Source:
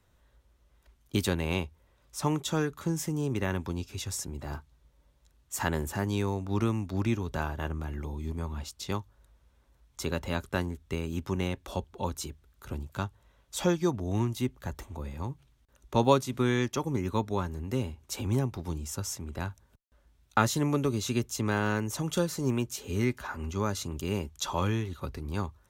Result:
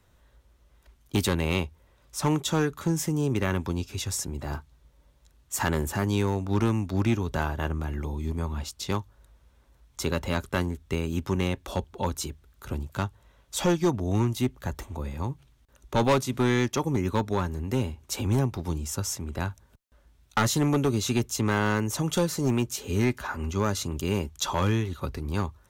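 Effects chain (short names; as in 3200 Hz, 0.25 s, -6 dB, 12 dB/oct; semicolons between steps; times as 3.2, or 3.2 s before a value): hard clip -21.5 dBFS, distortion -13 dB; gain +4.5 dB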